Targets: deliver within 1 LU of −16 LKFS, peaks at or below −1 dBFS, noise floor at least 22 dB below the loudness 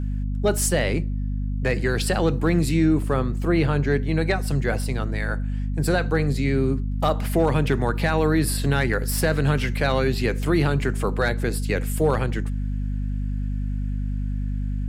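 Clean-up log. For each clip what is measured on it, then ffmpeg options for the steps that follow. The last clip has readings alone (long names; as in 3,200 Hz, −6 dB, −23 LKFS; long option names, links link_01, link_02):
mains hum 50 Hz; hum harmonics up to 250 Hz; level of the hum −23 dBFS; integrated loudness −23.5 LKFS; sample peak −8.0 dBFS; target loudness −16.0 LKFS
→ -af "bandreject=frequency=50:width_type=h:width=4,bandreject=frequency=100:width_type=h:width=4,bandreject=frequency=150:width_type=h:width=4,bandreject=frequency=200:width_type=h:width=4,bandreject=frequency=250:width_type=h:width=4"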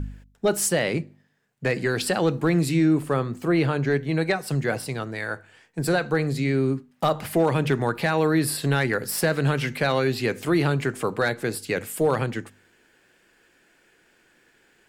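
mains hum none found; integrated loudness −24.0 LKFS; sample peak −10.5 dBFS; target loudness −16.0 LKFS
→ -af "volume=8dB"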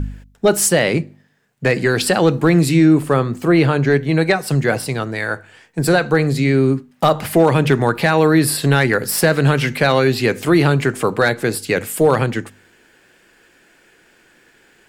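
integrated loudness −16.0 LKFS; sample peak −2.5 dBFS; background noise floor −54 dBFS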